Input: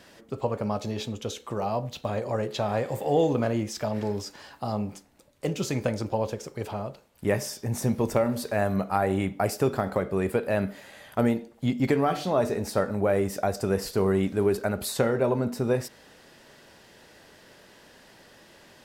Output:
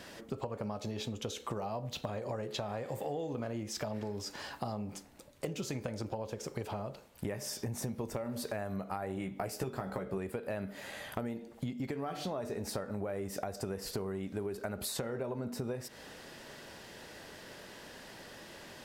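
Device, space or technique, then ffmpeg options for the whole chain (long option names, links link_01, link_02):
serial compression, leveller first: -filter_complex "[0:a]acompressor=threshold=-30dB:ratio=2,acompressor=threshold=-38dB:ratio=6,asettb=1/sr,asplit=3[link_01][link_02][link_03];[link_01]atrim=end=9.154[link_04];[link_02]atrim=start=9.15:end=10.18,asetpts=PTS-STARTPTS,afade=type=in:duration=0.004:curve=qsin,afade=type=out:start_time=1.026:duration=0.004:curve=qsin,asplit=2[link_05][link_06];[link_06]adelay=16,volume=-6dB[link_07];[link_05][link_07]amix=inputs=2:normalize=0,atrim=end_sample=45423[link_08];[link_03]atrim=start=10.176[link_09];[link_04][link_08]acrossfade=duration=0.004:curve1=hsin:curve2=qsin[link_10];[link_10][link_09]acrossfade=duration=0.004:curve1=qsin:curve2=hsin,volume=3dB"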